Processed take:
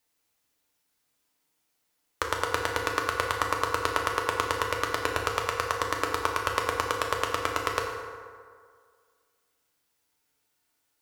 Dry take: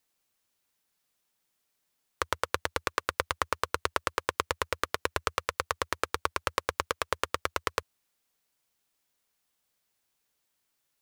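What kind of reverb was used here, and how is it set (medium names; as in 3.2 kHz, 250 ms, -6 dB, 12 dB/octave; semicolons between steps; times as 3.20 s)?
FDN reverb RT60 2 s, low-frequency decay 0.8×, high-frequency decay 0.5×, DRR -1 dB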